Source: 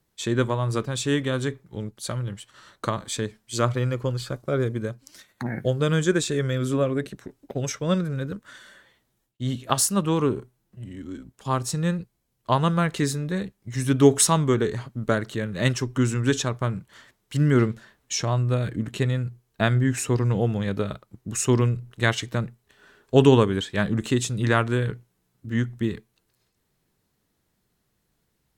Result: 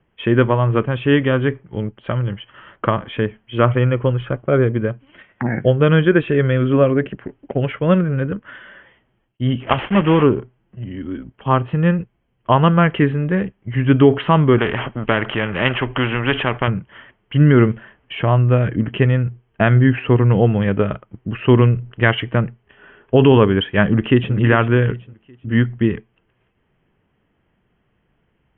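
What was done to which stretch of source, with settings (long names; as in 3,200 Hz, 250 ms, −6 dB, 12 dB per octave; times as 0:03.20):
0:09.60–0:10.24: one scale factor per block 3 bits
0:14.58–0:16.68: every bin compressed towards the loudest bin 2 to 1
0:23.84–0:24.35: delay throw 390 ms, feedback 30%, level −11 dB
whole clip: Chebyshev low-pass filter 3,200 Hz, order 8; boost into a limiter +10.5 dB; level −1 dB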